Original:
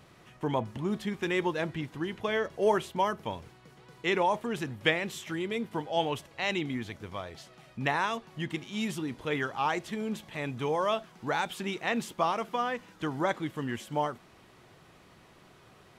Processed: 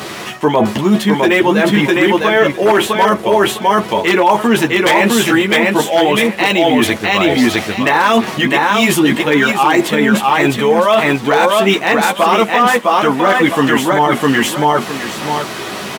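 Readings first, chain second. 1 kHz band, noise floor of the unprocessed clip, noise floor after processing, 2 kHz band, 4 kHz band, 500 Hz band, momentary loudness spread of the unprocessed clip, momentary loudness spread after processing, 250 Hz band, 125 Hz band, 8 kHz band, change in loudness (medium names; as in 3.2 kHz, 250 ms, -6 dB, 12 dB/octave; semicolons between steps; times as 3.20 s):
+19.5 dB, -58 dBFS, -25 dBFS, +21.0 dB, +20.5 dB, +19.5 dB, 9 LU, 3 LU, +21.5 dB, +16.0 dB, +23.5 dB, +19.5 dB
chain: treble shelf 3.1 kHz +7 dB; chorus voices 6, 0.25 Hz, delay 12 ms, depth 3 ms; on a send: feedback delay 657 ms, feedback 16%, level -3.5 dB; on the sum: wavefolder -22 dBFS; high-pass 190 Hz 12 dB/octave; dynamic bell 5.3 kHz, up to -7 dB, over -52 dBFS, Q 0.85; reverse; compression 12:1, threshold -41 dBFS, peak gain reduction 16.5 dB; reverse; loudness maximiser +35 dB; decimation joined by straight lines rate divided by 2×; trim -1 dB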